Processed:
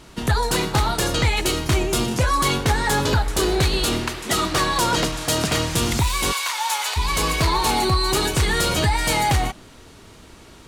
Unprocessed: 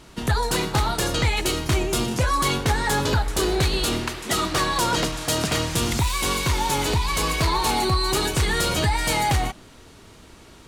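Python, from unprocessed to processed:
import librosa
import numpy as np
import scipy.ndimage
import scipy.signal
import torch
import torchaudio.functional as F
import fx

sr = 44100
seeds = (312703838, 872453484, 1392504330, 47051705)

y = fx.highpass(x, sr, hz=790.0, slope=24, at=(6.31, 6.96), fade=0.02)
y = F.gain(torch.from_numpy(y), 2.0).numpy()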